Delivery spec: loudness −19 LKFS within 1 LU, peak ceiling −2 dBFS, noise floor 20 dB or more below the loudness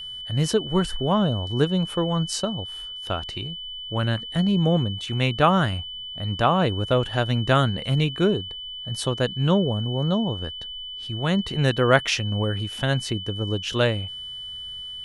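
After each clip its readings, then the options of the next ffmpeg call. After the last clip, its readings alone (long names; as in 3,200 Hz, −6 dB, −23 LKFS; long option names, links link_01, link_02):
interfering tone 3,000 Hz; level of the tone −33 dBFS; integrated loudness −24.0 LKFS; sample peak −3.0 dBFS; target loudness −19.0 LKFS
→ -af "bandreject=frequency=3000:width=30"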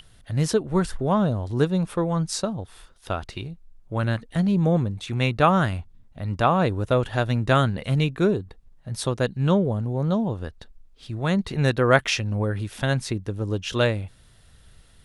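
interfering tone none found; integrated loudness −24.0 LKFS; sample peak −3.0 dBFS; target loudness −19.0 LKFS
→ -af "volume=5dB,alimiter=limit=-2dB:level=0:latency=1"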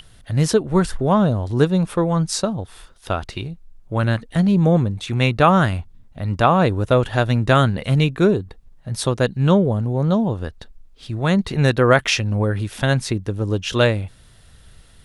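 integrated loudness −19.0 LKFS; sample peak −2.0 dBFS; background noise floor −49 dBFS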